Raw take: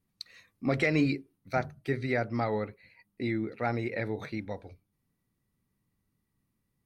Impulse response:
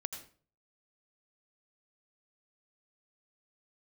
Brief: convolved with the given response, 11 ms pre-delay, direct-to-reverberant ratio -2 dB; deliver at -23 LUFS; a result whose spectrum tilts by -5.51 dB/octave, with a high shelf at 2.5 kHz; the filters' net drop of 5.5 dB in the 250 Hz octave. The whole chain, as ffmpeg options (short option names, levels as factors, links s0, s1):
-filter_complex "[0:a]equalizer=f=250:t=o:g=-7,highshelf=f=2500:g=-7,asplit=2[s0][s1];[1:a]atrim=start_sample=2205,adelay=11[s2];[s1][s2]afir=irnorm=-1:irlink=0,volume=1.33[s3];[s0][s3]amix=inputs=2:normalize=0,volume=2.51"